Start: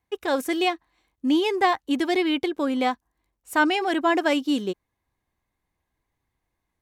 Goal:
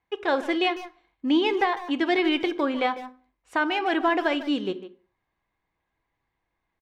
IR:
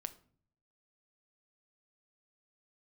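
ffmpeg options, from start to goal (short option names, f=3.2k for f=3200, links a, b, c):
-filter_complex "[0:a]lowpass=3.2k,lowshelf=f=410:g=-7.5,alimiter=limit=-16.5dB:level=0:latency=1:release=426,asplit=2[a][b];[b]adelay=150,highpass=300,lowpass=3.4k,asoftclip=type=hard:threshold=-25dB,volume=-12dB[c];[a][c]amix=inputs=2:normalize=0,asplit=2[d][e];[1:a]atrim=start_sample=2205,afade=t=out:st=0.32:d=0.01,atrim=end_sample=14553[f];[e][f]afir=irnorm=-1:irlink=0,volume=12dB[g];[d][g]amix=inputs=2:normalize=0,volume=-8dB"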